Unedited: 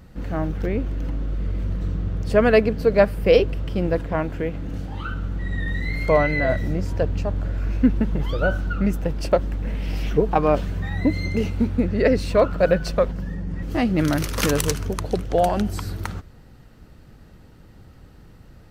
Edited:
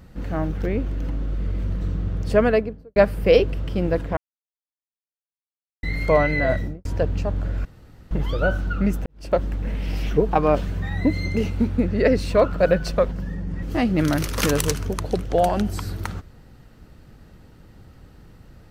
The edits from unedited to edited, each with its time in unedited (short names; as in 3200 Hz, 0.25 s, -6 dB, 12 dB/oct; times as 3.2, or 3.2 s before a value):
2.3–2.96 studio fade out
4.17–5.83 mute
6.55–6.85 studio fade out
7.65–8.11 room tone
9.06–9.38 fade in quadratic